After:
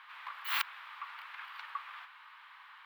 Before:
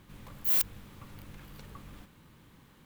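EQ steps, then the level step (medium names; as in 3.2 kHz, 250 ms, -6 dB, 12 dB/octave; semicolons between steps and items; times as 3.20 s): steep high-pass 1 kHz 36 dB/octave; distance through air 430 m; +16.0 dB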